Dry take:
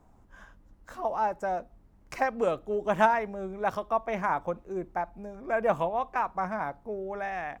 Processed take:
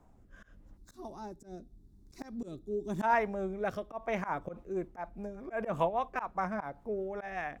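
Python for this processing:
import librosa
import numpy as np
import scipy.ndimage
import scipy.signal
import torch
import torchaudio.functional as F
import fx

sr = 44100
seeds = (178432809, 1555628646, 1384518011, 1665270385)

y = fx.rotary_switch(x, sr, hz=0.85, then_hz=5.0, switch_at_s=3.93)
y = fx.spec_box(y, sr, start_s=0.77, length_s=2.25, low_hz=420.0, high_hz=3400.0, gain_db=-16)
y = fx.auto_swell(y, sr, attack_ms=113.0)
y = y * librosa.db_to_amplitude(1.0)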